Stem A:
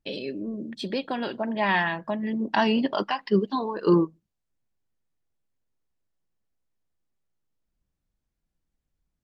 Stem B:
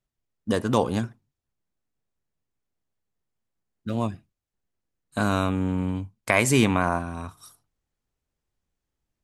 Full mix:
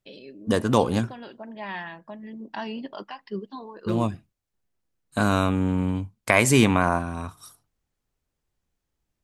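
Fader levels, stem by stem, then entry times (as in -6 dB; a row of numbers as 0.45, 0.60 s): -11.0, +2.0 dB; 0.00, 0.00 s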